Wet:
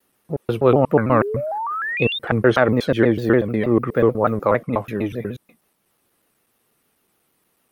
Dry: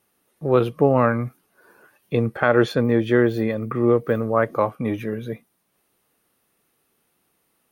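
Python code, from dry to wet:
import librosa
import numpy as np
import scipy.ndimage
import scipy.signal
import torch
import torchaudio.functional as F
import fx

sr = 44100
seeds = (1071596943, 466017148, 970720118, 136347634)

y = fx.block_reorder(x, sr, ms=122.0, group=2)
y = fx.spec_paint(y, sr, seeds[0], shape='rise', start_s=1.09, length_s=1.1, low_hz=260.0, high_hz=3700.0, level_db=-27.0)
y = fx.vibrato_shape(y, sr, shape='saw_down', rate_hz=6.6, depth_cents=160.0)
y = y * librosa.db_to_amplitude(2.0)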